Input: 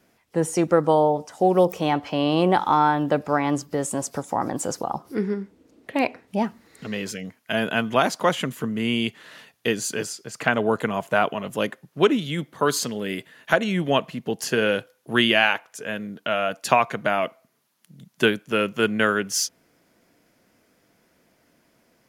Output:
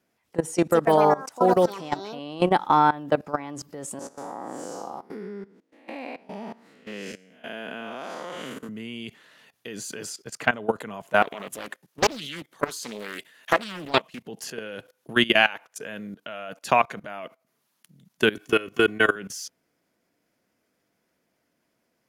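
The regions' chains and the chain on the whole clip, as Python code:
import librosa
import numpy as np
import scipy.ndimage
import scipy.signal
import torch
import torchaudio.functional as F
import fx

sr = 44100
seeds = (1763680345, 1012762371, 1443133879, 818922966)

y = fx.chain(x, sr, fx.lowpass(hz=11000.0, slope=12),
    fx.high_shelf(hz=4600.0, db=5.5),
    fx.echo_pitch(ms=187, semitones=5, count=2, db_per_echo=-6.0), at=(0.52, 2.5))
y = fx.chain(y, sr, fx.spec_blur(span_ms=204.0),
    fx.highpass(hz=240.0, slope=12),
    fx.high_shelf(hz=10000.0, db=-8.0), at=(3.99, 8.69))
y = fx.chain(y, sr, fx.highpass(hz=360.0, slope=6),
    fx.high_shelf(hz=2800.0, db=7.5),
    fx.doppler_dist(depth_ms=0.8), at=(11.22, 14.22))
y = fx.chain(y, sr, fx.comb(ms=2.7, depth=0.7),
    fx.band_squash(depth_pct=40), at=(18.35, 19.16))
y = fx.low_shelf(y, sr, hz=74.0, db=-7.0)
y = fx.level_steps(y, sr, step_db=19)
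y = y * 10.0 ** (2.0 / 20.0)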